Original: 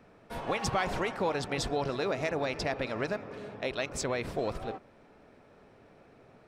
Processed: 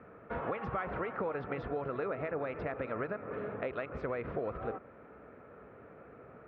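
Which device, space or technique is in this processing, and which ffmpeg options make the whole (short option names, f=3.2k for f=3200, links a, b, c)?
bass amplifier: -af "acompressor=threshold=-37dB:ratio=6,highpass=60,equalizer=f=63:t=q:w=4:g=7,equalizer=f=480:t=q:w=4:g=5,equalizer=f=850:t=q:w=4:g=-3,equalizer=f=1.3k:t=q:w=4:g=8,lowpass=f=2.2k:w=0.5412,lowpass=f=2.2k:w=1.3066,volume=2.5dB"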